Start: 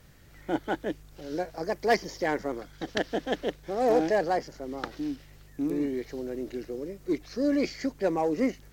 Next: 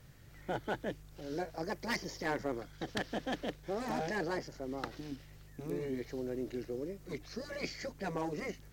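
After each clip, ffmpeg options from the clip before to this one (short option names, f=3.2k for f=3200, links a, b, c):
-af "equalizer=f=120:t=o:w=0.45:g=8,afftfilt=real='re*lt(hypot(re,im),0.316)':imag='im*lt(hypot(re,im),0.316)':win_size=1024:overlap=0.75,asoftclip=type=hard:threshold=-22.5dB,volume=-4dB"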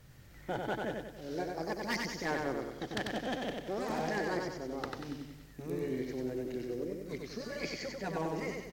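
-af "aecho=1:1:94|188|282|376|470|564:0.668|0.321|0.154|0.0739|0.0355|0.017"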